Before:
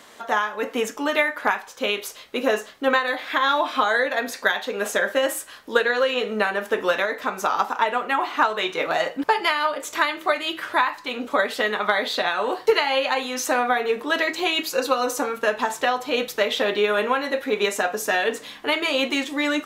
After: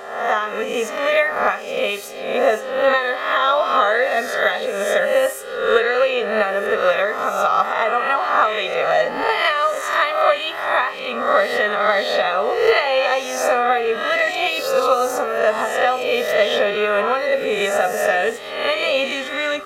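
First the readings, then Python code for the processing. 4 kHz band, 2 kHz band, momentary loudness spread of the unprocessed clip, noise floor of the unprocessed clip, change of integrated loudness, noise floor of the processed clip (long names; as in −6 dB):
+1.5 dB, +3.0 dB, 5 LU, −44 dBFS, +4.5 dB, −30 dBFS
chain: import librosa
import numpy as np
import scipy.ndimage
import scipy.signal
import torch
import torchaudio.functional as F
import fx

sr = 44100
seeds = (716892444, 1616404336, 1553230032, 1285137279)

y = fx.spec_swells(x, sr, rise_s=0.84)
y = y + 0.76 * np.pad(y, (int(1.6 * sr / 1000.0), 0))[:len(y)]
y = fx.dmg_buzz(y, sr, base_hz=400.0, harmonics=34, level_db=-42.0, tilt_db=-6, odd_only=False)
y = fx.high_shelf(y, sr, hz=3500.0, db=-7.5)
y = fx.wow_flutter(y, sr, seeds[0], rate_hz=2.1, depth_cents=25.0)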